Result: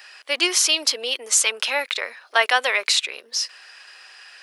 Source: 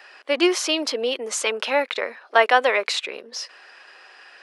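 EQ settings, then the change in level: tilt +4.5 dB/oct; -3.0 dB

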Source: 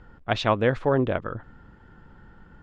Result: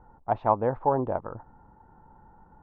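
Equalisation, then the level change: synth low-pass 880 Hz, resonance Q 5.3; -7.0 dB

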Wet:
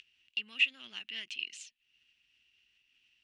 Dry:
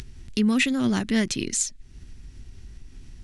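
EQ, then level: band-pass 2800 Hz, Q 11; +3.5 dB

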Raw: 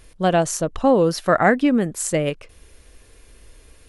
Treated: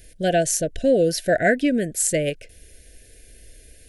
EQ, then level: Chebyshev band-stop 710–1500 Hz, order 5; dynamic EQ 200 Hz, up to -4 dB, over -32 dBFS, Q 1.3; high shelf 7500 Hz +8 dB; 0.0 dB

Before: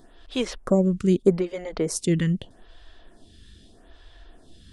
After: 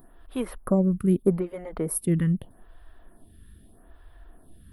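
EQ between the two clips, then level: EQ curve 170 Hz 0 dB, 460 Hz -5 dB, 1200 Hz 0 dB, 6800 Hz -25 dB, 11000 Hz +13 dB; 0.0 dB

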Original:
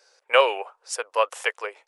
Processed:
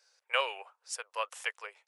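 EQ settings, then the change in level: HPF 1500 Hz 6 dB/oct; -7.0 dB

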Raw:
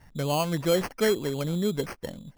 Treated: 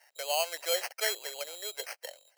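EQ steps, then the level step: steep high-pass 610 Hz 36 dB/oct; Butterworth band-stop 3500 Hz, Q 7.5; bell 1100 Hz -14 dB 0.84 oct; +3.0 dB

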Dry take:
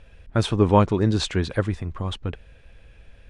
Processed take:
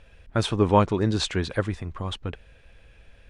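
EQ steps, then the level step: low shelf 390 Hz -4 dB; 0.0 dB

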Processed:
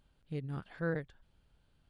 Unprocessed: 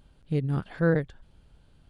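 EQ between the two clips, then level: tilt shelf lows -6.5 dB, about 1300 Hz; high shelf 2400 Hz -11 dB; -6.0 dB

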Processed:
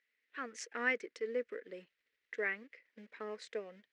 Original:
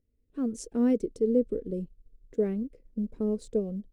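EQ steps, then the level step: dynamic EQ 3700 Hz, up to -7 dB, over -58 dBFS, Q 1.3; resonant high-pass 1900 Hz, resonance Q 4; air absorption 210 m; +13.5 dB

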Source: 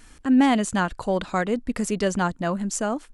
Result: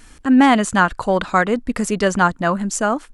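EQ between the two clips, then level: dynamic EQ 1300 Hz, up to +7 dB, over -38 dBFS, Q 1; +4.5 dB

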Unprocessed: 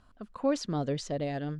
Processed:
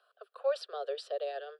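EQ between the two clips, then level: steep high-pass 400 Hz 96 dB/oct; fixed phaser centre 1400 Hz, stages 8; 0.0 dB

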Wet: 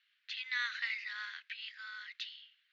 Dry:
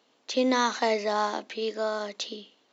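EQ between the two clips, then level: steep high-pass 1600 Hz 48 dB/oct; air absorption 400 m; +3.0 dB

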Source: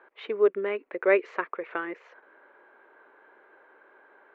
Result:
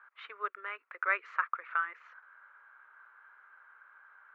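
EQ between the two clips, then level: resonant high-pass 1300 Hz, resonance Q 4.8; -8.0 dB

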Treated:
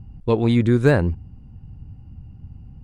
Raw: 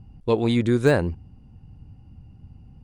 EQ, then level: low shelf 310 Hz +11 dB; bell 1500 Hz +5.5 dB 2.3 oct; -4.0 dB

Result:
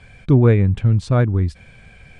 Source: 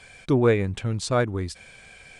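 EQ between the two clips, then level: tone controls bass +13 dB, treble -10 dB; 0.0 dB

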